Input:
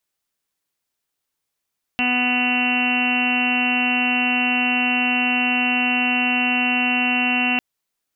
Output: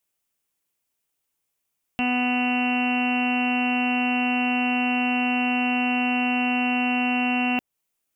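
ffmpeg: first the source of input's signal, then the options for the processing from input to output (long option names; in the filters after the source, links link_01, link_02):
-f lavfi -i "aevalsrc='0.0708*sin(2*PI*248*t)+0.01*sin(2*PI*496*t)+0.0473*sin(2*PI*744*t)+0.0168*sin(2*PI*992*t)+0.0133*sin(2*PI*1240*t)+0.0178*sin(2*PI*1488*t)+0.0168*sin(2*PI*1736*t)+0.0224*sin(2*PI*1984*t)+0.0237*sin(2*PI*2232*t)+0.0224*sin(2*PI*2480*t)+0.106*sin(2*PI*2728*t)+0.0355*sin(2*PI*2976*t)':duration=5.6:sample_rate=44100"
-filter_complex "[0:a]acrossover=split=1500[link_01][link_02];[link_02]alimiter=limit=-21dB:level=0:latency=1:release=225[link_03];[link_01][link_03]amix=inputs=2:normalize=0,aexciter=amount=1.5:drive=6.6:freq=2300,highshelf=frequency=2200:gain=-8.5"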